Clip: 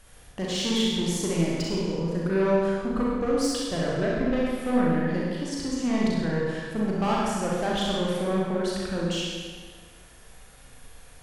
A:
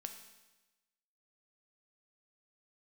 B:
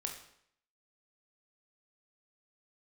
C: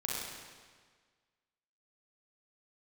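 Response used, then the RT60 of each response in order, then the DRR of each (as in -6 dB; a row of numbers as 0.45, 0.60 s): C; 1.1, 0.70, 1.6 s; 5.5, 2.0, -5.0 dB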